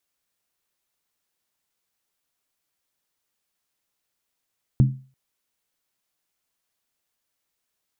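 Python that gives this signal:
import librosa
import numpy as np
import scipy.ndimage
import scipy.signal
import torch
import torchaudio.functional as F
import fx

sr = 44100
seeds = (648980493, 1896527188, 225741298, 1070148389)

y = fx.strike_skin(sr, length_s=0.34, level_db=-9.5, hz=132.0, decay_s=0.37, tilt_db=8.5, modes=5)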